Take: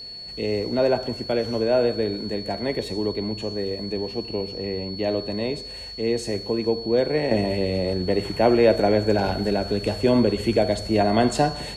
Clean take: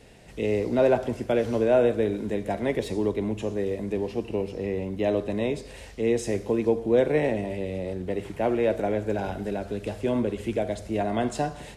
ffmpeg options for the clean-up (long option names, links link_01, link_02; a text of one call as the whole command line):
ffmpeg -i in.wav -af "bandreject=frequency=4400:width=30,asetnsamples=nb_out_samples=441:pad=0,asendcmd='7.31 volume volume -7dB',volume=0dB" out.wav